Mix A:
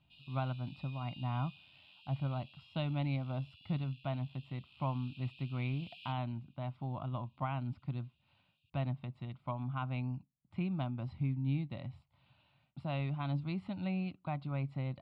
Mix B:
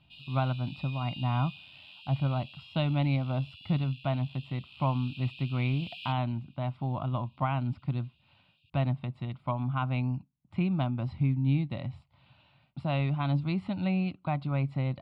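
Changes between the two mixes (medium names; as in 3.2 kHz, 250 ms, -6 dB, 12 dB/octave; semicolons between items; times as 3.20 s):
speech +7.5 dB; background +10.0 dB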